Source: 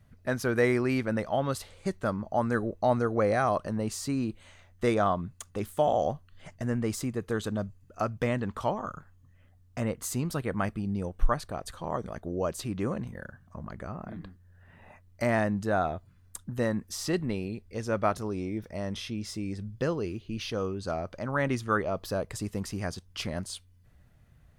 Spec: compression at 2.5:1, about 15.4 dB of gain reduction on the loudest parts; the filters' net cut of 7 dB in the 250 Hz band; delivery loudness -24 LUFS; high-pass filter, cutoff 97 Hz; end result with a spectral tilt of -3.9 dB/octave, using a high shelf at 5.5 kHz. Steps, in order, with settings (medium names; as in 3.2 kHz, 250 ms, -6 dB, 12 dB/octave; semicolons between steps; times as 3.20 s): high-pass 97 Hz; peaking EQ 250 Hz -9 dB; treble shelf 5.5 kHz +9 dB; compression 2.5:1, threshold -46 dBFS; trim +20.5 dB